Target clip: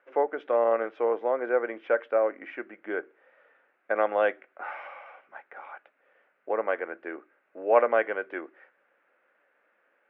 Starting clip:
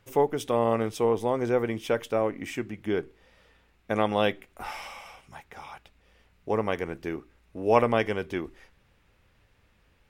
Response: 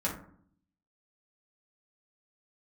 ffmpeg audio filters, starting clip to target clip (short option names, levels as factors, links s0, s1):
-af "highpass=f=360:w=0.5412,highpass=f=360:w=1.3066,equalizer=f=410:t=q:w=4:g=-5,equalizer=f=570:t=q:w=4:g=5,equalizer=f=960:t=q:w=4:g=-4,equalizer=f=1500:t=q:w=4:g=7,lowpass=f=2100:w=0.5412,lowpass=f=2100:w=1.3066"